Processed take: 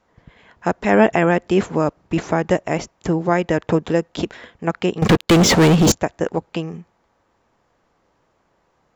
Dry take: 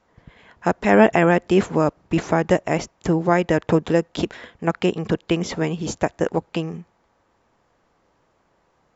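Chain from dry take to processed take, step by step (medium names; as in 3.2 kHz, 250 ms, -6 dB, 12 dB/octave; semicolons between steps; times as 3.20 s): 5.02–5.92 s: waveshaping leveller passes 5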